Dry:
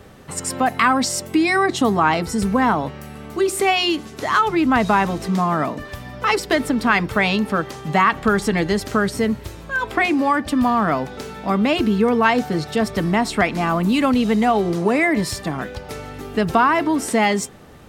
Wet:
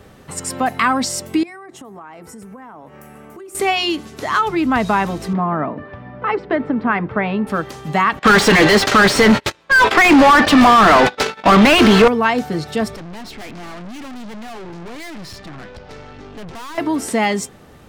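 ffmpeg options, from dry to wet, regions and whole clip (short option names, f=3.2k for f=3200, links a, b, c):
-filter_complex "[0:a]asettb=1/sr,asplit=3[a][b][c];[a]atrim=end=1.434[d];[b]atrim=start=1.43:end=3.55,asetpts=PTS-STARTPTS,afade=t=in:d=0.004:c=qsin,afade=t=out:st=2.116:d=0.004:c=qsin,highpass=f=290:p=1,equalizer=f=4.1k:w=1.3:g=-14.5,acompressor=threshold=-35dB:ratio=6:attack=3.2:release=140:knee=1:detection=peak[e];[c]atrim=start=3.546[f];[d][e]acrossfade=d=0.004:c1=hsin:c2=qsin[g];[g][f]acrossfade=d=0.004:c1=qsin:c2=hsin,asettb=1/sr,asplit=3[h][i][j];[h]atrim=end=5.334[k];[i]atrim=start=5.33:end=7.47,asetpts=PTS-STARTPTS,afade=t=in:d=0.004:c=qsin,afade=t=out:st=2.136:d=0.004:c=qsin,highpass=100,lowpass=2.1k,aemphasis=mode=reproduction:type=75fm[l];[j]atrim=start=7.466[m];[k][l]acrossfade=d=0.004:c1=hsin:c2=qsin[n];[n][m]acrossfade=d=0.004:c1=qsin:c2=hsin,asettb=1/sr,asplit=3[o][p][q];[o]atrim=end=8.194[r];[p]atrim=start=8.19:end=12.08,asetpts=PTS-STARTPTS,afade=t=in:d=0.004:c=qsin,afade=t=out:st=3.886:d=0.004:c=qsin,agate=range=-38dB:threshold=-31dB:ratio=16:release=100:detection=peak,equalizer=f=4.3k:t=o:w=2.9:g=11,asplit=2[s][t];[t]highpass=f=720:p=1,volume=34dB,asoftclip=type=tanh:threshold=-1dB[u];[s][u]amix=inputs=2:normalize=0,lowpass=f=1.4k:p=1,volume=-6dB[v];[q]atrim=start=12.076[w];[r][v]acrossfade=d=0.004:c1=hsin:c2=qsin[x];[x][w]acrossfade=d=0.004:c1=qsin:c2=hsin,asettb=1/sr,asplit=3[y][z][aa];[y]atrim=end=12.964[ab];[z]atrim=start=12.96:end=16.78,asetpts=PTS-STARTPTS,afade=t=in:d=0.004:c=qsin,afade=t=out:st=3.816:d=0.004:c=qsin,lowpass=f=5.8k:w=0.5412,lowpass=f=5.8k:w=1.3066,aeval=exprs='(tanh(39.8*val(0)+0.6)-tanh(0.6))/39.8':c=same[ac];[aa]atrim=start=16.776[ad];[ab][ac]acrossfade=d=0.004:c1=hsin:c2=qsin[ae];[ae][ad]acrossfade=d=0.004:c1=qsin:c2=hsin"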